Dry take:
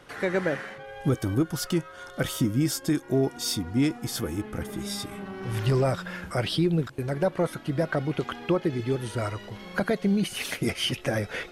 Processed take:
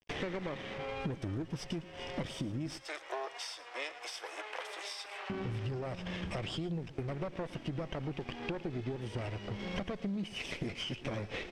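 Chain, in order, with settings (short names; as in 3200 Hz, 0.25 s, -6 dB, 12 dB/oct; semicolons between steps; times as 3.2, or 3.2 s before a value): minimum comb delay 0.37 ms; gate with hold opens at -40 dBFS; 2.78–5.3 Bessel high-pass 890 Hz, order 8; limiter -20 dBFS, peak gain reduction 5.5 dB; compressor 10:1, threshold -41 dBFS, peak gain reduction 17.5 dB; bit-crush 11-bit; air absorption 110 m; echo 0.112 s -17 dB; gain +6.5 dB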